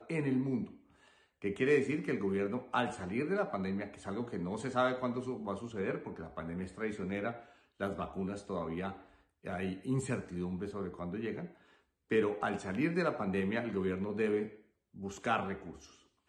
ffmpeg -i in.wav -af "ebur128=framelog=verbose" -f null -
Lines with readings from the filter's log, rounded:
Integrated loudness:
  I:         -36.0 LUFS
  Threshold: -46.6 LUFS
Loudness range:
  LRA:         5.2 LU
  Threshold: -56.6 LUFS
  LRA low:   -39.9 LUFS
  LRA high:  -34.6 LUFS